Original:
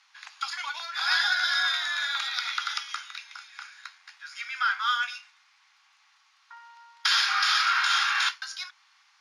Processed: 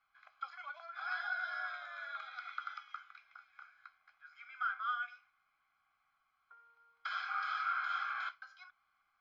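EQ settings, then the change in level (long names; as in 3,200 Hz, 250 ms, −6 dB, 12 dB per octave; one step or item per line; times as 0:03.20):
moving average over 48 samples
high-frequency loss of the air 87 metres
spectral tilt −2.5 dB per octave
+5.5 dB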